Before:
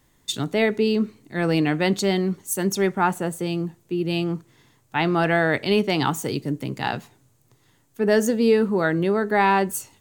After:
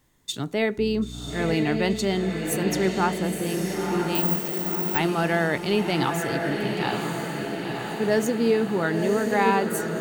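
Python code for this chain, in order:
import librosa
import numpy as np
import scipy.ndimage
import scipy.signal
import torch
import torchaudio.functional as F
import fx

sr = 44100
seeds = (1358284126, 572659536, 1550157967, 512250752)

y = fx.dmg_buzz(x, sr, base_hz=60.0, harmonics=5, level_db=-34.0, tilt_db=-4, odd_only=False, at=(0.77, 1.53), fade=0.02)
y = fx.echo_diffused(y, sr, ms=994, feedback_pct=61, wet_db=-4.0)
y = fx.resample_bad(y, sr, factor=2, down='filtered', up='zero_stuff', at=(4.15, 4.98))
y = F.gain(torch.from_numpy(y), -3.5).numpy()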